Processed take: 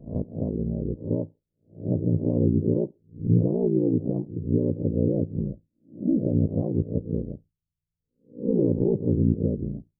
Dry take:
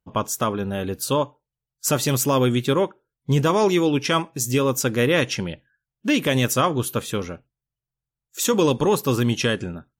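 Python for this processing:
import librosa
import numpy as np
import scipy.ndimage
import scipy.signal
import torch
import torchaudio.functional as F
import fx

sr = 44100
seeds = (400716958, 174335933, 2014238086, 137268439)

p1 = fx.spec_swells(x, sr, rise_s=0.36)
p2 = np.clip(10.0 ** (12.5 / 20.0) * p1, -1.0, 1.0) / 10.0 ** (12.5 / 20.0)
p3 = p1 + (p2 * librosa.db_to_amplitude(-4.0))
p4 = p3 * np.sin(2.0 * np.pi * 29.0 * np.arange(len(p3)) / sr)
y = scipy.ndimage.gaussian_filter1d(p4, 21.0, mode='constant')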